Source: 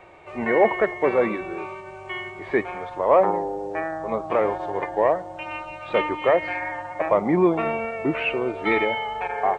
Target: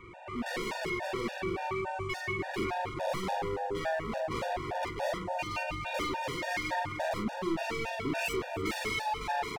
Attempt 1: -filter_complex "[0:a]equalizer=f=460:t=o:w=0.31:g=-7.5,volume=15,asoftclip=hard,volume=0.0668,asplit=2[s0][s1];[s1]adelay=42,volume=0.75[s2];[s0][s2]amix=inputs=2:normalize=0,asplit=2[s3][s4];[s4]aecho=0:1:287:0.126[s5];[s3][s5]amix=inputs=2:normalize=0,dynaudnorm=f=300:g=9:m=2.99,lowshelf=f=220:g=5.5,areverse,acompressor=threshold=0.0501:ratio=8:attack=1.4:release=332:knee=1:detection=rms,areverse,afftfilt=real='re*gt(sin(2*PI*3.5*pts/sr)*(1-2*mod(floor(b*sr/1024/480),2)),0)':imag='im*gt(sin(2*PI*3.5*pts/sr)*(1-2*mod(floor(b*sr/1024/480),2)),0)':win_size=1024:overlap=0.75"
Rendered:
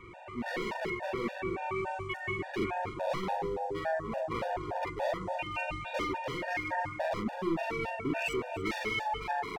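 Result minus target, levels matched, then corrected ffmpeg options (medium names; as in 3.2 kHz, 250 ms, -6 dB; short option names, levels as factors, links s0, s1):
overload inside the chain: distortion -4 dB
-filter_complex "[0:a]equalizer=f=460:t=o:w=0.31:g=-7.5,volume=37.6,asoftclip=hard,volume=0.0266,asplit=2[s0][s1];[s1]adelay=42,volume=0.75[s2];[s0][s2]amix=inputs=2:normalize=0,asplit=2[s3][s4];[s4]aecho=0:1:287:0.126[s5];[s3][s5]amix=inputs=2:normalize=0,dynaudnorm=f=300:g=9:m=2.99,lowshelf=f=220:g=5.5,areverse,acompressor=threshold=0.0501:ratio=8:attack=1.4:release=332:knee=1:detection=rms,areverse,afftfilt=real='re*gt(sin(2*PI*3.5*pts/sr)*(1-2*mod(floor(b*sr/1024/480),2)),0)':imag='im*gt(sin(2*PI*3.5*pts/sr)*(1-2*mod(floor(b*sr/1024/480),2)),0)':win_size=1024:overlap=0.75"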